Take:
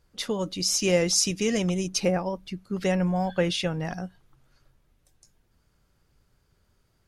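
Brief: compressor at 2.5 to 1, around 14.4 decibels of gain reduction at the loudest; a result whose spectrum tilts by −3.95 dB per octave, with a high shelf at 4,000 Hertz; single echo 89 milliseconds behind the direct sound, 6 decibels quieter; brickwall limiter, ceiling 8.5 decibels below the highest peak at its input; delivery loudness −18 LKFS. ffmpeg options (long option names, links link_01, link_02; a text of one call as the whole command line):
ffmpeg -i in.wav -af "highshelf=frequency=4000:gain=6.5,acompressor=threshold=-38dB:ratio=2.5,alimiter=level_in=4dB:limit=-24dB:level=0:latency=1,volume=-4dB,aecho=1:1:89:0.501,volume=19dB" out.wav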